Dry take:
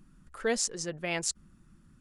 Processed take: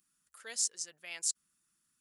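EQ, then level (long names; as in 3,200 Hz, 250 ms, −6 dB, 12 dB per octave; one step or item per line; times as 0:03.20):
first difference
low-shelf EQ 78 Hz +6 dB
0.0 dB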